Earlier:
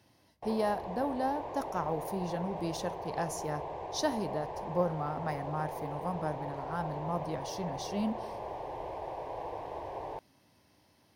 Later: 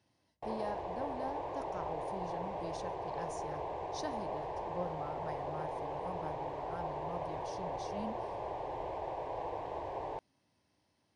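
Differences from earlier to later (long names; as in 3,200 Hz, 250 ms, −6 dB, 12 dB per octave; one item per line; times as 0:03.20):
speech −10.0 dB
master: add linear-phase brick-wall low-pass 10,000 Hz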